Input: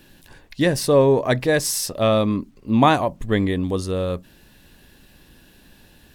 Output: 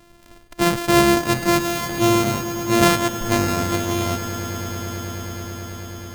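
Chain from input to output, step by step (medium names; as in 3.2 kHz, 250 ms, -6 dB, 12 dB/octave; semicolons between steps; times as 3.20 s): sorted samples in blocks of 128 samples; echo with a slow build-up 108 ms, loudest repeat 8, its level -16 dB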